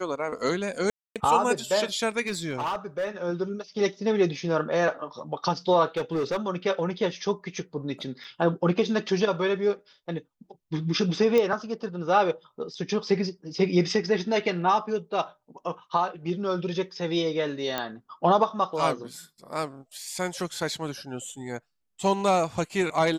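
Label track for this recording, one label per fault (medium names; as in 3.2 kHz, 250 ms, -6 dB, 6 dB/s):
0.900000	1.160000	dropout 257 ms
2.260000	3.090000	clipped -24.5 dBFS
5.970000	6.370000	clipped -22.5 dBFS
8.240000	8.240000	dropout 4.4 ms
11.380000	11.380000	pop -13 dBFS
17.780000	17.780000	pop -13 dBFS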